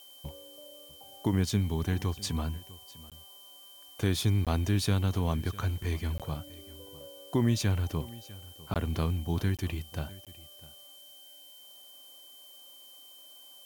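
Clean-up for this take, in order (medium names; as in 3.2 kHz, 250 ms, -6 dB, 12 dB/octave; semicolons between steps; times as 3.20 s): band-stop 3.1 kHz, Q 30; interpolate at 3.10/4.45/6.18/8.74/9.57/10.25 s, 17 ms; noise print and reduce 23 dB; inverse comb 651 ms -20 dB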